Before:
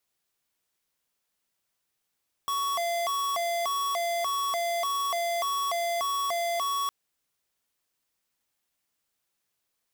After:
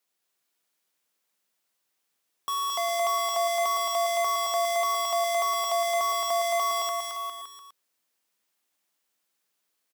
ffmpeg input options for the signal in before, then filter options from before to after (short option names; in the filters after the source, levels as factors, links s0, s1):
-f lavfi -i "aevalsrc='0.0376*(2*lt(mod((903*t+217/1.7*(0.5-abs(mod(1.7*t,1)-0.5))),1),0.5)-1)':d=4.41:s=44100"
-filter_complex "[0:a]highpass=200,asplit=2[s0][s1];[s1]aecho=0:1:220|407|566|701.1|815.9:0.631|0.398|0.251|0.158|0.1[s2];[s0][s2]amix=inputs=2:normalize=0"